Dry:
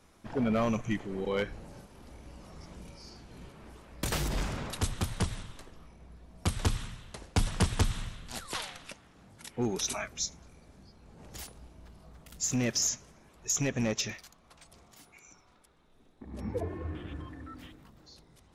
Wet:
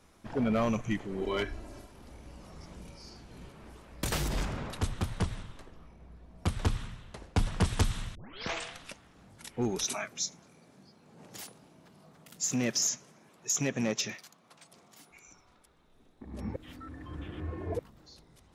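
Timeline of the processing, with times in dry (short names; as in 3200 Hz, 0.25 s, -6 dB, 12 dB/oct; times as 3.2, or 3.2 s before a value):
1.21–1.91 comb 3 ms, depth 86%
4.45–7.65 high shelf 3900 Hz -8.5 dB
8.15 tape start 0.60 s
9.84–15.11 HPF 130 Hz 24 dB/oct
16.56–17.79 reverse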